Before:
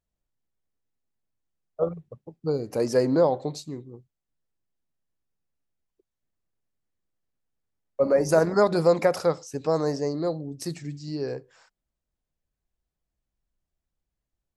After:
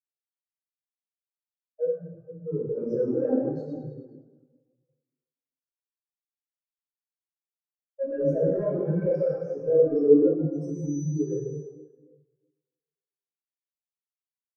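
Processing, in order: HPF 110 Hz 24 dB/oct; in parallel at +0.5 dB: limiter -19 dBFS, peak gain reduction 11.5 dB; 10.52–10.98 on the sum: whine 6000 Hz -36 dBFS; soft clip -23 dBFS, distortion -6 dB; on a send: thin delay 0.106 s, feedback 71%, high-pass 1800 Hz, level -8 dB; on the sum: plate-style reverb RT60 3.5 s, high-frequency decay 0.6×, DRR -7 dB; spectral expander 2.5:1

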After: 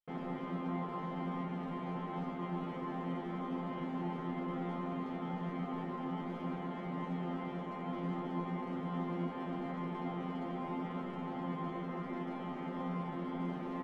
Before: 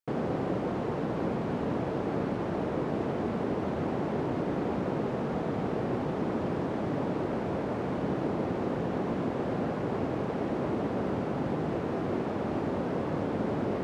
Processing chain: elliptic low-pass 3500 Hz; comb 4.8 ms, depth 78%; in parallel at +3 dB: limiter -29 dBFS, peak gain reduction 11.5 dB; on the sum: hard clip -20 dBFS, distortion -20 dB; resonator bank F3 fifth, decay 0.44 s; gain +4 dB

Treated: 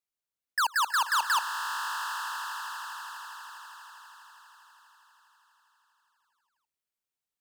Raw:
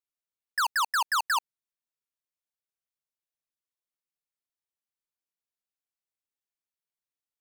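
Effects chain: swelling echo 81 ms, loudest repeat 8, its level -15.5 dB

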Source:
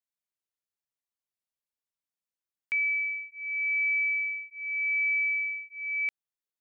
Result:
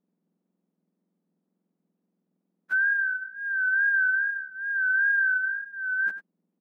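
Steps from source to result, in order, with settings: spectrum mirrored in octaves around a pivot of 1900 Hz; wow and flutter 62 cents; echo 96 ms -12 dB; gain +4 dB

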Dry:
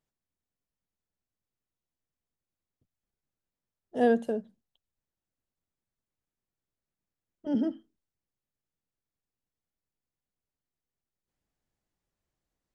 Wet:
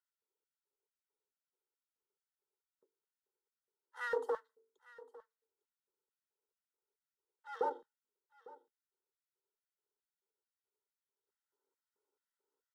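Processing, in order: minimum comb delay 1.7 ms; high shelf 2600 Hz -8 dB; notch comb 460 Hz; frequency shift +250 Hz; notches 50/100/150/200/250/300/350/400/450 Hz; LFO high-pass square 2.3 Hz 410–1900 Hz; fixed phaser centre 470 Hz, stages 8; echo 0.853 s -20 dB; gain +1 dB

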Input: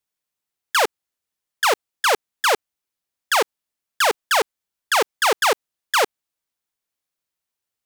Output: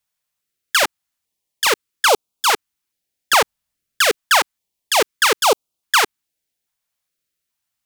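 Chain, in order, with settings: 3.41–4.06 low shelf 210 Hz +10.5 dB; stepped notch 2.4 Hz 350–1800 Hz; gain +5.5 dB

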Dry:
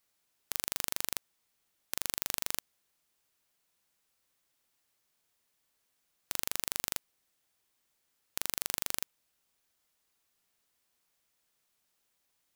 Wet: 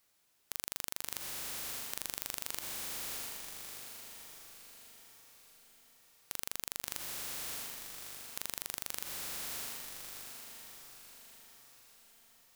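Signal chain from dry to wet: diffused feedback echo 0.681 s, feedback 52%, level -9 dB; limiter -13.5 dBFS, peak gain reduction 9.5 dB; gain +4.5 dB

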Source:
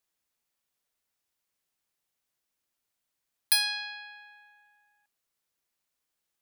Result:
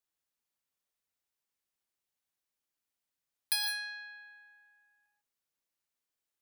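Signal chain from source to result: non-linear reverb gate 0.18 s rising, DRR 4.5 dB; gain -7.5 dB

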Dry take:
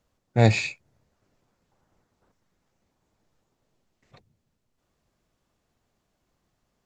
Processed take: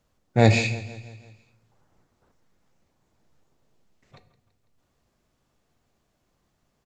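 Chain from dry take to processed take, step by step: feedback echo 0.166 s, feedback 53%, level -17.5 dB; on a send at -11.5 dB: reverb RT60 0.75 s, pre-delay 13 ms; on the sum: gain +2 dB

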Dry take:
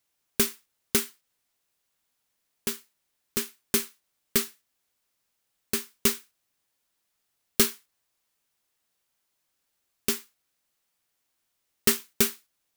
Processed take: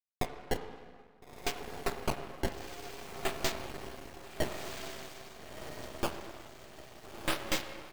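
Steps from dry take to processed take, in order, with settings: speed glide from 187% -> 135%; AGC gain up to 7.5 dB; bit-crush 6-bit; downsampling 32000 Hz; decimation with a swept rate 20×, swing 160% 0.5 Hz; overloaded stage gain 21.5 dB; diffused feedback echo 1.369 s, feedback 44%, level -6.5 dB; on a send at -8 dB: reverb RT60 1.9 s, pre-delay 8 ms; on the sum: half-wave rectifier

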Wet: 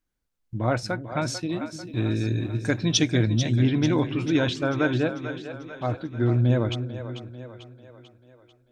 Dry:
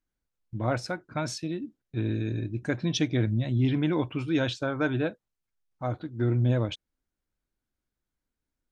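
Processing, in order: 1.49–3.6 high shelf 4400 Hz +10.5 dB; split-band echo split 360 Hz, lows 0.298 s, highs 0.443 s, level -10 dB; gain +3.5 dB

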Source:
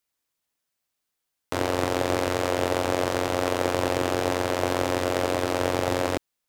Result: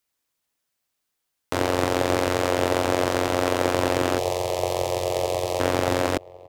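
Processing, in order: 4.18–5.6 fixed phaser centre 610 Hz, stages 4; outdoor echo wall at 190 m, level -19 dB; gain +2.5 dB

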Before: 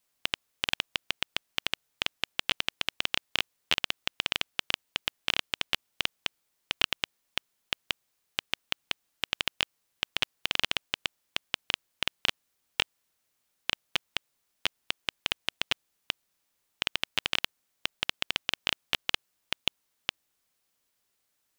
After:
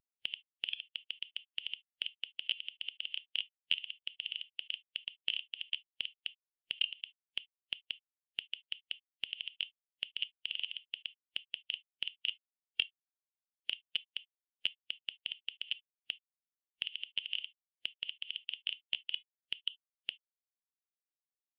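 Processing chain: bell 1100 Hz -13.5 dB 0.63 oct; soft clip -16.5 dBFS, distortion -11 dB; non-linear reverb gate 90 ms flat, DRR 10 dB; compressor 12:1, threshold -47 dBFS, peak gain reduction 22 dB; spectral expander 2.5:1; gain +10.5 dB

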